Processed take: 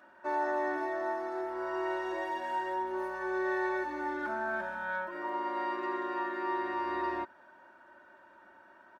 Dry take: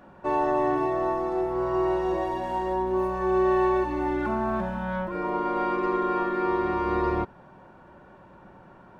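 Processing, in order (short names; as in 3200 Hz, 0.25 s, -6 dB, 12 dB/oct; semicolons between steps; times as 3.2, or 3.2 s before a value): HPF 800 Hz 6 dB/oct; bell 1600 Hz +10 dB 0.47 oct; comb 3.2 ms, depth 74%; gain -6.5 dB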